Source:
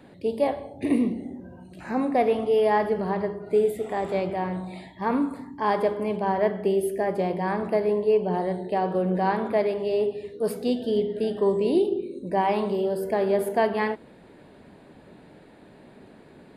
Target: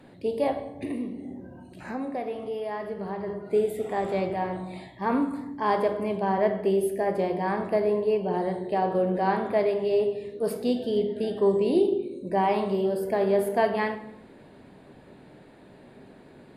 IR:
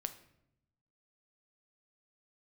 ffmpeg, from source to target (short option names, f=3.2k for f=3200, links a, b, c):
-filter_complex "[0:a]asplit=3[a][b][c];[a]afade=t=out:st=0.7:d=0.02[d];[b]acompressor=threshold=-32dB:ratio=2.5,afade=t=in:st=0.7:d=0.02,afade=t=out:st=3.26:d=0.02[e];[c]afade=t=in:st=3.26:d=0.02[f];[d][e][f]amix=inputs=3:normalize=0[g];[1:a]atrim=start_sample=2205,asetrate=39249,aresample=44100[h];[g][h]afir=irnorm=-1:irlink=0"